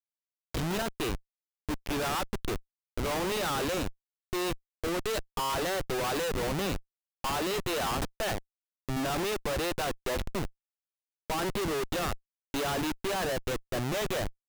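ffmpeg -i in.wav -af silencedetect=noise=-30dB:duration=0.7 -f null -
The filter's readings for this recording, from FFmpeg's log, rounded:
silence_start: 10.46
silence_end: 11.30 | silence_duration: 0.84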